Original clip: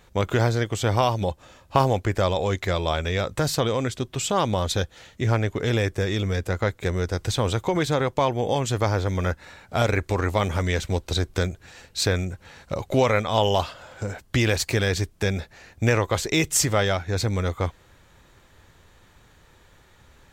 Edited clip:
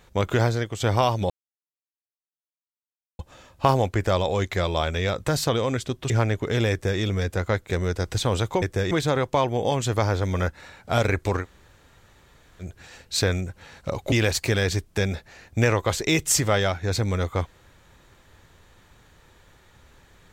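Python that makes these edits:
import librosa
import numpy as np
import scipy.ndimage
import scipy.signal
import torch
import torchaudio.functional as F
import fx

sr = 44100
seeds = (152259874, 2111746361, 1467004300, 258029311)

y = fx.edit(x, sr, fx.fade_out_to(start_s=0.42, length_s=0.38, floor_db=-6.0),
    fx.insert_silence(at_s=1.3, length_s=1.89),
    fx.cut(start_s=4.21, length_s=1.02),
    fx.duplicate(start_s=5.84, length_s=0.29, to_s=7.75),
    fx.room_tone_fill(start_s=10.25, length_s=1.23, crossfade_s=0.1),
    fx.cut(start_s=12.96, length_s=1.41), tone=tone)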